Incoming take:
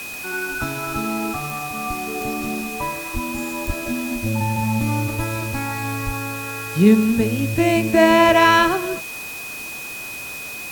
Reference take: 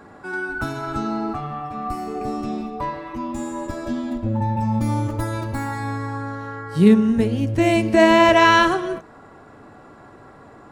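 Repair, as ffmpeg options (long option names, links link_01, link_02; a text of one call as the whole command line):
ffmpeg -i in.wav -filter_complex "[0:a]adeclick=threshold=4,bandreject=frequency=2500:width=30,asplit=3[link_01][link_02][link_03];[link_01]afade=type=out:start_time=3.13:duration=0.02[link_04];[link_02]highpass=frequency=140:width=0.5412,highpass=frequency=140:width=1.3066,afade=type=in:start_time=3.13:duration=0.02,afade=type=out:start_time=3.25:duration=0.02[link_05];[link_03]afade=type=in:start_time=3.25:duration=0.02[link_06];[link_04][link_05][link_06]amix=inputs=3:normalize=0,asplit=3[link_07][link_08][link_09];[link_07]afade=type=out:start_time=3.66:duration=0.02[link_10];[link_08]highpass=frequency=140:width=0.5412,highpass=frequency=140:width=1.3066,afade=type=in:start_time=3.66:duration=0.02,afade=type=out:start_time=3.78:duration=0.02[link_11];[link_09]afade=type=in:start_time=3.78:duration=0.02[link_12];[link_10][link_11][link_12]amix=inputs=3:normalize=0,asplit=3[link_13][link_14][link_15];[link_13]afade=type=out:start_time=6.05:duration=0.02[link_16];[link_14]highpass=frequency=140:width=0.5412,highpass=frequency=140:width=1.3066,afade=type=in:start_time=6.05:duration=0.02,afade=type=out:start_time=6.17:duration=0.02[link_17];[link_15]afade=type=in:start_time=6.17:duration=0.02[link_18];[link_16][link_17][link_18]amix=inputs=3:normalize=0,afwtdn=0.016" out.wav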